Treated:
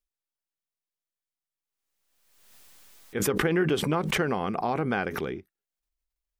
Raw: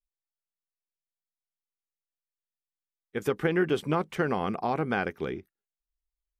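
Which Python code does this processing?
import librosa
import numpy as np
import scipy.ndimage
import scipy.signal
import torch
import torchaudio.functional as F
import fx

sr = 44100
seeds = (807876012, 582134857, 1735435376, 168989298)

y = fx.pre_swell(x, sr, db_per_s=42.0)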